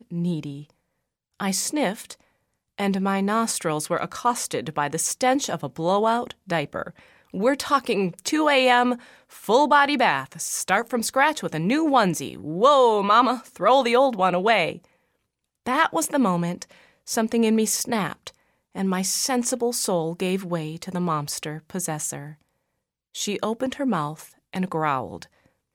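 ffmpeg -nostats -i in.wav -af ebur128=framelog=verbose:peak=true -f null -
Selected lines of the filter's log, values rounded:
Integrated loudness:
  I:         -22.7 LUFS
  Threshold: -33.4 LUFS
Loudness range:
  LRA:         8.4 LU
  Threshold: -43.3 LUFS
  LRA low:   -28.5 LUFS
  LRA high:  -20.1 LUFS
True peak:
  Peak:       -5.1 dBFS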